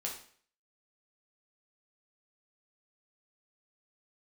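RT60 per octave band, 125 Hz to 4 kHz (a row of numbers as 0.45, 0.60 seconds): 0.55, 0.50, 0.50, 0.50, 0.50, 0.50 seconds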